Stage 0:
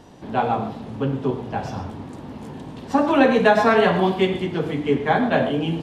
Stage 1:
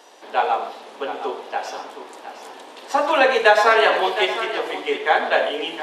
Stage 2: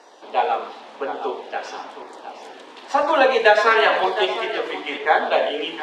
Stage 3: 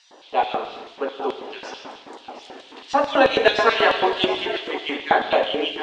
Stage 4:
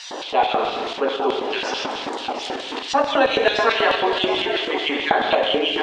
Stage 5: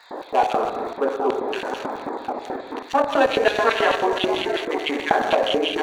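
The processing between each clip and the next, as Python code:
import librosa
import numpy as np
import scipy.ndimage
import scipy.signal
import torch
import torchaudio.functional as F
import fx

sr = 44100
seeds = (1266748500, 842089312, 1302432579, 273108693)

y1 = scipy.signal.sosfilt(scipy.signal.butter(4, 420.0, 'highpass', fs=sr, output='sos'), x)
y1 = fx.tilt_shelf(y1, sr, db=-3.5, hz=1200.0)
y1 = y1 + 10.0 ** (-11.5 / 20.0) * np.pad(y1, (int(713 * sr / 1000.0), 0))[:len(y1)]
y1 = y1 * librosa.db_to_amplitude(3.5)
y2 = fx.filter_lfo_notch(y1, sr, shape='saw_down', hz=0.99, low_hz=320.0, high_hz=3400.0, q=2.9)
y2 = fx.air_absorb(y2, sr, metres=69.0)
y2 = y2 * librosa.db_to_amplitude(1.0)
y3 = scipy.signal.sosfilt(scipy.signal.butter(2, 7300.0, 'lowpass', fs=sr, output='sos'), y2)
y3 = fx.filter_lfo_highpass(y3, sr, shape='square', hz=4.6, low_hz=250.0, high_hz=3200.0, q=1.9)
y3 = fx.rev_gated(y3, sr, seeds[0], gate_ms=310, shape='flat', drr_db=9.0)
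y3 = y3 * librosa.db_to_amplitude(-1.0)
y4 = fx.rider(y3, sr, range_db=4, speed_s=2.0)
y4 = fx.tremolo_shape(y4, sr, shape='saw_up', hz=4.3, depth_pct=55)
y4 = fx.env_flatten(y4, sr, amount_pct=50)
y4 = y4 * librosa.db_to_amplitude(-1.5)
y5 = fx.wiener(y4, sr, points=15)
y5 = fx.notch(y5, sr, hz=5100.0, q=5.2)
y5 = fx.dmg_crackle(y5, sr, seeds[1], per_s=48.0, level_db=-40.0)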